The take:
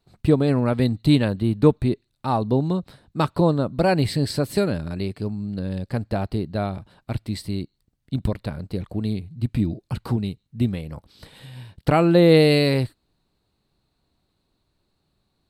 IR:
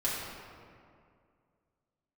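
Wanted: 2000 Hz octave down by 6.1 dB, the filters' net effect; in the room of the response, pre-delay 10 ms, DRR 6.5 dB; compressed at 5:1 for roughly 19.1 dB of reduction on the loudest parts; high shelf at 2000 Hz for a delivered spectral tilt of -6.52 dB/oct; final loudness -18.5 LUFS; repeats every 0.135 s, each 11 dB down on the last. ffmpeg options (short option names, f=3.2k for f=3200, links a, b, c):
-filter_complex "[0:a]highshelf=f=2k:g=-4.5,equalizer=f=2k:t=o:g=-5,acompressor=threshold=-33dB:ratio=5,aecho=1:1:135|270|405:0.282|0.0789|0.0221,asplit=2[a][b];[1:a]atrim=start_sample=2205,adelay=10[c];[b][c]afir=irnorm=-1:irlink=0,volume=-14dB[d];[a][d]amix=inputs=2:normalize=0,volume=17.5dB"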